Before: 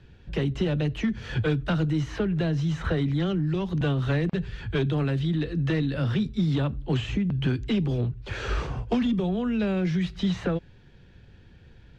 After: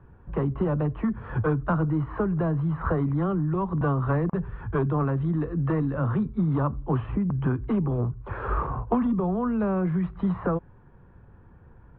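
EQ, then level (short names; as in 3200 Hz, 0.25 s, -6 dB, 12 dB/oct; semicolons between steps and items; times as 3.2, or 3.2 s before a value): synth low-pass 1100 Hz, resonance Q 4.4; air absorption 210 m; 0.0 dB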